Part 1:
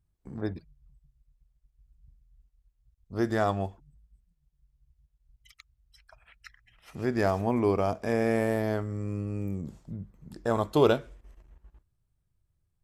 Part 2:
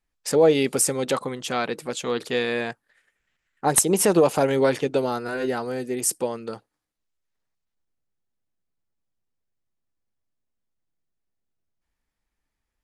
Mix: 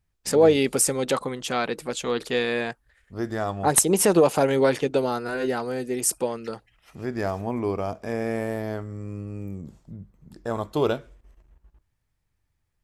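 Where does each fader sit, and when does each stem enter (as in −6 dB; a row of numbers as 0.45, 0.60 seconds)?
−1.5, 0.0 decibels; 0.00, 0.00 seconds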